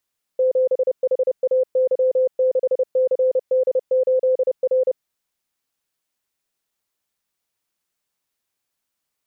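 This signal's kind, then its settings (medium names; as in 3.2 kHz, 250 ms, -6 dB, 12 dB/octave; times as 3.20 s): Morse "7HAY6CD8R" 30 wpm 515 Hz -14 dBFS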